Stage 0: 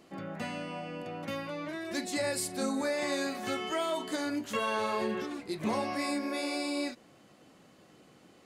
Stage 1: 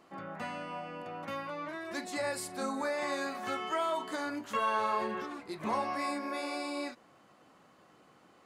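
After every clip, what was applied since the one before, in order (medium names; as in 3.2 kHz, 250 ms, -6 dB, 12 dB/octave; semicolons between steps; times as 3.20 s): peaking EQ 1.1 kHz +10.5 dB 1.5 oct; trim -6.5 dB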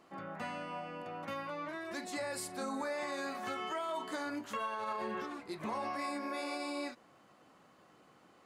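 peak limiter -28 dBFS, peak gain reduction 9 dB; trim -1.5 dB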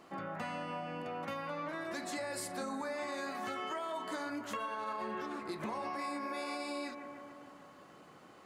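bucket-brigade echo 147 ms, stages 2048, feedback 71%, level -12 dB; compression 3:1, threshold -43 dBFS, peak gain reduction 7.5 dB; trim +5 dB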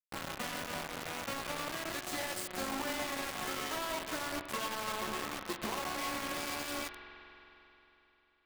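word length cut 6-bit, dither none; spring tank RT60 3.5 s, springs 44 ms, chirp 65 ms, DRR 7.5 dB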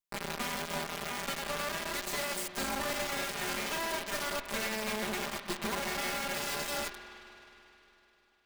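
comb filter that takes the minimum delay 5 ms; trim +4 dB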